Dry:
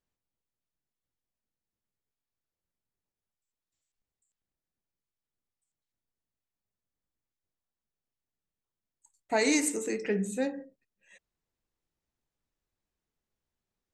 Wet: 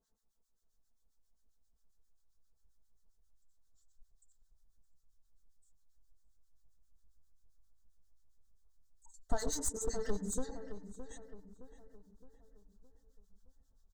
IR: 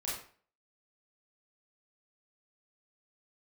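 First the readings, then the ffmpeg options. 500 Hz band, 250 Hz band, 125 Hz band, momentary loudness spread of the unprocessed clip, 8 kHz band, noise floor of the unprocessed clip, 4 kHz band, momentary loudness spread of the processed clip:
-9.5 dB, -12.5 dB, n/a, 8 LU, -5.0 dB, under -85 dBFS, -11.0 dB, 21 LU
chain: -filter_complex "[0:a]equalizer=f=6.8k:w=1.7:g=6.5,asplit=2[a][b];[1:a]atrim=start_sample=2205,atrim=end_sample=3528,lowpass=6.4k[c];[b][c]afir=irnorm=-1:irlink=0,volume=-10dB[d];[a][d]amix=inputs=2:normalize=0,acrossover=split=1100[e][f];[e]aeval=exprs='val(0)*(1-1/2+1/2*cos(2*PI*7.5*n/s))':c=same[g];[f]aeval=exprs='val(0)*(1-1/2-1/2*cos(2*PI*7.5*n/s))':c=same[h];[g][h]amix=inputs=2:normalize=0,aecho=1:1:4.5:0.77,acompressor=threshold=-39dB:ratio=6,aeval=exprs='clip(val(0),-1,0.0112)':c=same,asplit=2[i][j];[j]adelay=616,lowpass=f=2.2k:p=1,volume=-10.5dB,asplit=2[k][l];[l]adelay=616,lowpass=f=2.2k:p=1,volume=0.47,asplit=2[m][n];[n]adelay=616,lowpass=f=2.2k:p=1,volume=0.47,asplit=2[o][p];[p]adelay=616,lowpass=f=2.2k:p=1,volume=0.47,asplit=2[q][r];[r]adelay=616,lowpass=f=2.2k:p=1,volume=0.47[s];[i][k][m][o][q][s]amix=inputs=6:normalize=0,asubboost=boost=11.5:cutoff=78,asuperstop=centerf=2400:order=4:qfactor=1.2,volume=6dB"

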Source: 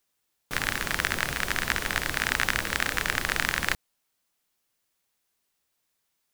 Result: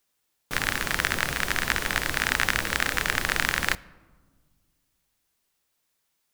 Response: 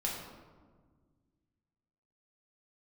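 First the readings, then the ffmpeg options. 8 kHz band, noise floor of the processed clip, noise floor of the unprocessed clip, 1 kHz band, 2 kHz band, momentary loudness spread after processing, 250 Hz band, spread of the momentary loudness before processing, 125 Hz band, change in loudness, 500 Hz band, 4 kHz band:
+1.5 dB, -75 dBFS, -77 dBFS, +1.5 dB, +1.5 dB, 4 LU, +1.5 dB, 4 LU, +1.5 dB, +1.5 dB, +1.5 dB, +1.5 dB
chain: -filter_complex "[0:a]asplit=2[a][b];[1:a]atrim=start_sample=2205[c];[b][c]afir=irnorm=-1:irlink=0,volume=-21dB[d];[a][d]amix=inputs=2:normalize=0,volume=1dB"

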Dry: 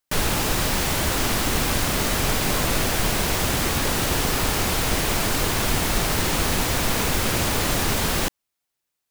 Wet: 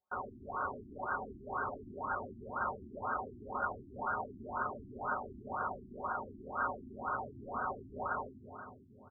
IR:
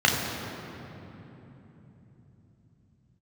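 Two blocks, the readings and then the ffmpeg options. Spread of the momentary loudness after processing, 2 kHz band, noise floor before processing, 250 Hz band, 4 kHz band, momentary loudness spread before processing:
5 LU, -16.0 dB, -81 dBFS, -21.0 dB, under -40 dB, 0 LU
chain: -filter_complex "[0:a]acrossover=split=2700[a][b];[b]acompressor=threshold=-40dB:ratio=4:attack=1:release=60[c];[a][c]amix=inputs=2:normalize=0,aecho=1:1:5.9:0.77,aphaser=in_gain=1:out_gain=1:delay=1.5:decay=0.3:speed=0.75:type=sinusoidal,lowpass=f=3.2k:t=q:w=0.5098,lowpass=f=3.2k:t=q:w=0.6013,lowpass=f=3.2k:t=q:w=0.9,lowpass=f=3.2k:t=q:w=2.563,afreqshift=-3800,asplit=2[d][e];[1:a]atrim=start_sample=2205,adelay=113[f];[e][f]afir=irnorm=-1:irlink=0,volume=-23dB[g];[d][g]amix=inputs=2:normalize=0,afftfilt=real='re*lt(b*sr/1024,360*pow(1600/360,0.5+0.5*sin(2*PI*2*pts/sr)))':imag='im*lt(b*sr/1024,360*pow(1600/360,0.5+0.5*sin(2*PI*2*pts/sr)))':win_size=1024:overlap=0.75,volume=1.5dB"

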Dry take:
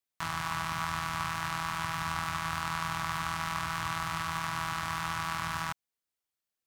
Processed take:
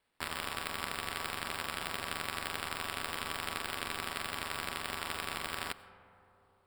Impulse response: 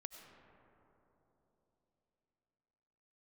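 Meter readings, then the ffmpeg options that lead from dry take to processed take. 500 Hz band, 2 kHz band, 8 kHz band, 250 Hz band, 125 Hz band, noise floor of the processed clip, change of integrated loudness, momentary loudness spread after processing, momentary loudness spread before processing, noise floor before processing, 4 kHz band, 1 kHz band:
+3.0 dB, -3.5 dB, -1.5 dB, -5.5 dB, -11.5 dB, -69 dBFS, -4.0 dB, 1 LU, 1 LU, under -85 dBFS, +0.5 dB, -7.5 dB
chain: -filter_complex "[0:a]aderivative,acrusher=samples=7:mix=1:aa=0.000001,asplit=2[a][b];[1:a]atrim=start_sample=2205[c];[b][c]afir=irnorm=-1:irlink=0,volume=-1.5dB[d];[a][d]amix=inputs=2:normalize=0,volume=3dB"

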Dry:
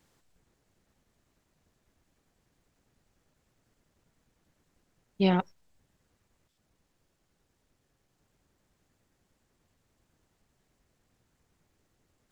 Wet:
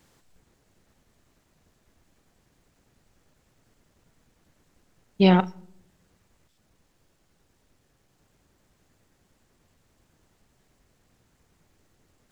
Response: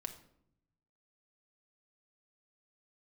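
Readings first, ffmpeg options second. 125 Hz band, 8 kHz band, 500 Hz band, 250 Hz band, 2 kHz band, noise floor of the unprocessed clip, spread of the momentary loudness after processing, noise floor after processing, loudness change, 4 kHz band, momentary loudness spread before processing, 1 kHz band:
+7.5 dB, n/a, +7.0 dB, +7.5 dB, +7.0 dB, -76 dBFS, 10 LU, -68 dBFS, +6.5 dB, +7.0 dB, 11 LU, +7.0 dB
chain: -filter_complex "[0:a]asplit=2[a][b];[1:a]atrim=start_sample=2205,adelay=38[c];[b][c]afir=irnorm=-1:irlink=0,volume=-14.5dB[d];[a][d]amix=inputs=2:normalize=0,volume=7dB"

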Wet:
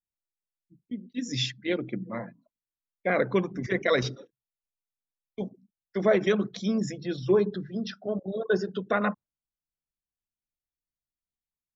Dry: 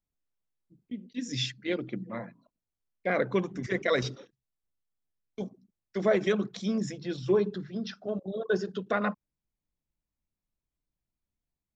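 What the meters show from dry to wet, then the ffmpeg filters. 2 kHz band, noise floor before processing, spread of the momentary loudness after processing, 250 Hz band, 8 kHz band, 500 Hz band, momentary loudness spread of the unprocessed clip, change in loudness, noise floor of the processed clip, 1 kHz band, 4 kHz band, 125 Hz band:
+2.5 dB, under -85 dBFS, 14 LU, +2.5 dB, n/a, +2.5 dB, 14 LU, +2.5 dB, under -85 dBFS, +2.5 dB, +2.5 dB, +2.5 dB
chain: -af "afftdn=nr=15:nf=-52,volume=2.5dB"

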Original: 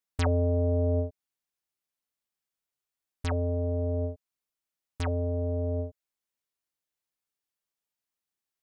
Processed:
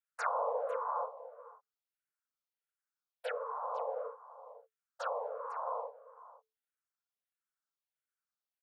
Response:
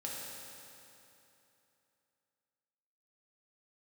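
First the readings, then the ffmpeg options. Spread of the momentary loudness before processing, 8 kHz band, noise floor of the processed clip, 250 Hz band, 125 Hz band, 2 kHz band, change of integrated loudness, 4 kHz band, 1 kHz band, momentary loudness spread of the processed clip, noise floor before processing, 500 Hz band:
11 LU, n/a, under -85 dBFS, under -40 dB, under -40 dB, -0.5 dB, -8.5 dB, -9.5 dB, +7.5 dB, 21 LU, under -85 dBFS, -6.5 dB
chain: -filter_complex "[0:a]equalizer=f=970:w=1.9:g=14.5,afftfilt=real='hypot(re,im)*cos(2*PI*random(0))':imag='hypot(re,im)*sin(2*PI*random(1))':win_size=512:overlap=0.75,aecho=1:1:501:0.168,afreqshift=440,asplit=2[a][b];[b]afreqshift=-1.5[c];[a][c]amix=inputs=2:normalize=1,volume=-2dB"

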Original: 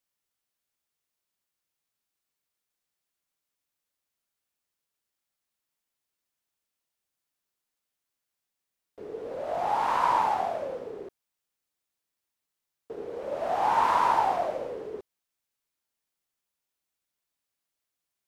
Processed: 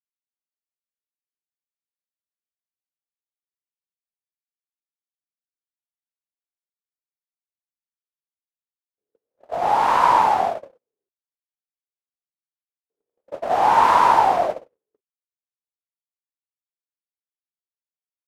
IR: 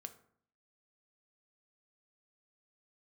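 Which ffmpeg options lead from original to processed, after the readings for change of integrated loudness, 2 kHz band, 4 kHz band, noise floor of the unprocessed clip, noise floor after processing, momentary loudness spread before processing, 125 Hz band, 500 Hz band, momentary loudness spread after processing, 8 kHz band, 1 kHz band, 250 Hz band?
+9.5 dB, +8.5 dB, +8.5 dB, under -85 dBFS, under -85 dBFS, 18 LU, +7.5 dB, +5.5 dB, 18 LU, n/a, +8.5 dB, +6.0 dB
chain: -af "agate=range=-59dB:threshold=-29dB:ratio=16:detection=peak,volume=8.5dB"

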